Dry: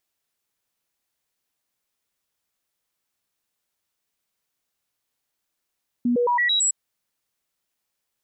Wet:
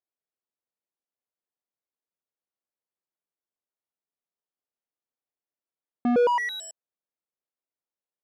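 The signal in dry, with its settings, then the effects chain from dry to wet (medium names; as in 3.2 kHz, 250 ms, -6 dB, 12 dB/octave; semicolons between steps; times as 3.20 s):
stepped sine 242 Hz up, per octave 1, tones 6, 0.11 s, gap 0.00 s -17.5 dBFS
waveshaping leveller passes 5; band-pass filter 470 Hz, Q 0.75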